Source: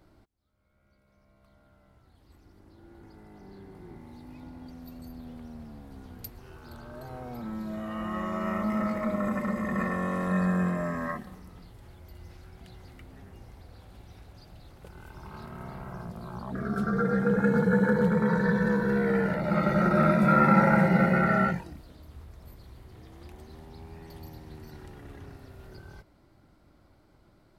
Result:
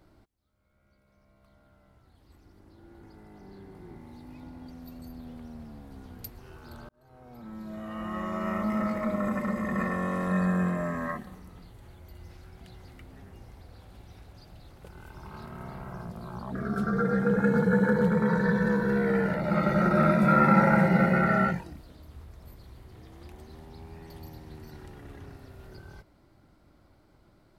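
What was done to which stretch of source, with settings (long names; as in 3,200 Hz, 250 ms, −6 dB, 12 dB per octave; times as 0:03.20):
0:06.89–0:08.80: fade in equal-power
0:10.39–0:12.24: notch filter 5,200 Hz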